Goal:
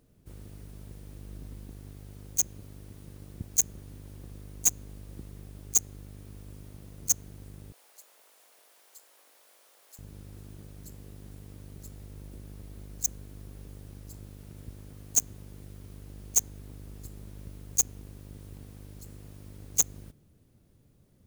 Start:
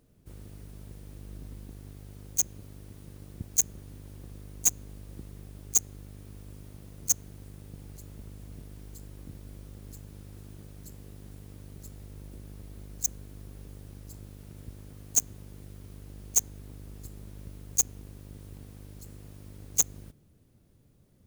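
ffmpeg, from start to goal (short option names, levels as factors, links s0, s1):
-filter_complex "[0:a]asettb=1/sr,asplit=3[s0][s1][s2];[s0]atrim=end=7.724[s3];[s1]atrim=start=7.72:end=9.99,asetpts=PTS-STARTPTS,afade=t=in:d=0.004:c=qsin,afade=t=out:st=2.266:d=0.004:c=qsin,highpass=f=630:w=0.5412,highpass=f=630:w=1.3066[s4];[s2]atrim=start=9.986[s5];[s3][s4]acrossfade=d=0.004:c1=hsin:c2=qsin[s6];[s6][s5]acrossfade=d=0.004:c1=qsin:c2=hsin"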